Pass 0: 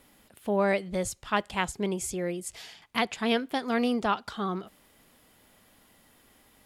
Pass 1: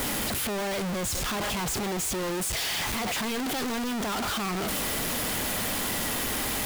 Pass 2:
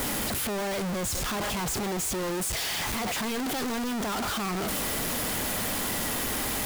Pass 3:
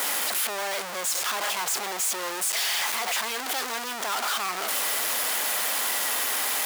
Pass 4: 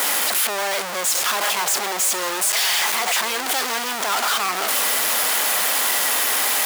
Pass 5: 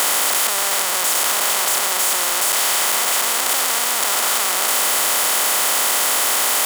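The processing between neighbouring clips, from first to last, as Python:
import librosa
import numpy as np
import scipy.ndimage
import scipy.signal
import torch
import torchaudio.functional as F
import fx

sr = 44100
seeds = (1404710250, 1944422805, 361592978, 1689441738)

y1 = np.sign(x) * np.sqrt(np.mean(np.square(x)))
y1 = F.gain(torch.from_numpy(y1), 2.0).numpy()
y2 = fx.peak_eq(y1, sr, hz=3000.0, db=-2.0, octaves=1.4)
y3 = scipy.signal.sosfilt(scipy.signal.butter(2, 740.0, 'highpass', fs=sr, output='sos'), y2)
y3 = F.gain(torch.from_numpy(y3), 4.5).numpy()
y4 = y3 + 10.0 ** (-13.0 / 20.0) * np.pad(y3, (int(1062 * sr / 1000.0), 0))[:len(y3)]
y4 = F.gain(torch.from_numpy(y4), 6.5).numpy()
y5 = fx.bin_compress(y4, sr, power=0.2)
y5 = fx.high_shelf(y5, sr, hz=4600.0, db=5.0)
y5 = F.gain(torch.from_numpy(y5), -9.0).numpy()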